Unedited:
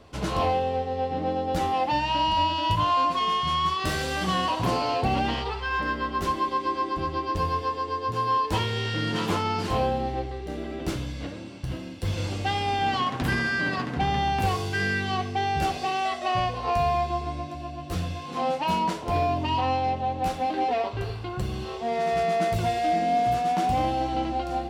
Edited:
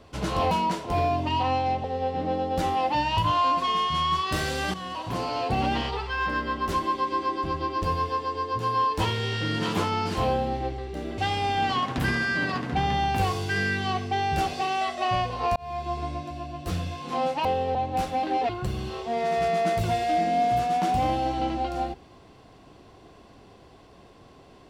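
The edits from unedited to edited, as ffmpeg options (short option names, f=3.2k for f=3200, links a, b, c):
-filter_complex "[0:a]asplit=10[a][b][c][d][e][f][g][h][i][j];[a]atrim=end=0.512[k];[b]atrim=start=18.688:end=20.022[l];[c]atrim=start=0.808:end=2.142[m];[d]atrim=start=2.698:end=4.27,asetpts=PTS-STARTPTS,afade=t=out:st=1.568:d=0.004:c=hsin:silence=0.223872[n];[e]atrim=start=4.27:end=10.712,asetpts=PTS-STARTPTS,afade=t=in:d=0.95:silence=0.223872[o];[f]atrim=start=12.418:end=16.8,asetpts=PTS-STARTPTS,afade=t=out:st=4.378:d=0.004:c=hsin[p];[g]atrim=start=16.8:end=18.692,asetpts=PTS-STARTPTS,afade=t=in:d=0.44[q];[h]atrim=start=0.508:end=0.812[r];[i]atrim=start=20.018:end=20.762[s];[j]atrim=start=21.238[t];[k][l]acrossfade=d=0.004:c1=hsin:c2=hsin[u];[u][m]acrossfade=d=0.004:c1=hsin:c2=hsin[v];[n][o]concat=n=2:v=0:a=1[w];[v][w]acrossfade=d=0.004:c1=hsin:c2=hsin[x];[p][q]concat=n=2:v=0:a=1[y];[x][y]acrossfade=d=0.004:c1=hsin:c2=hsin[z];[z][r]acrossfade=d=0.004:c1=hsin:c2=hsin[aa];[aa][s]acrossfade=d=0.004:c1=hsin:c2=hsin[ab];[ab][t]acrossfade=d=0.004:c1=hsin:c2=hsin"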